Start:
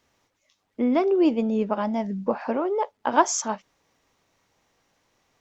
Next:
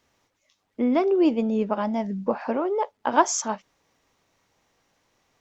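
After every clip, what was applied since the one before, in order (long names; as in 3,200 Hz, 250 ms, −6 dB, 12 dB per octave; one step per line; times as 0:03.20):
no processing that can be heard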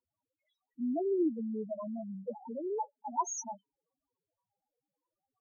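spectral peaks only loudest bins 2
spectral tilt +2.5 dB per octave
level −5 dB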